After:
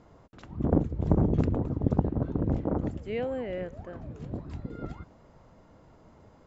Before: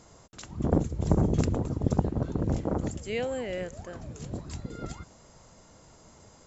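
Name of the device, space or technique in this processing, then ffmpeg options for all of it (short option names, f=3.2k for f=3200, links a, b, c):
phone in a pocket: -af "lowpass=3.6k,equalizer=f=280:t=o:w=0.27:g=3,highshelf=f=2.3k:g=-10"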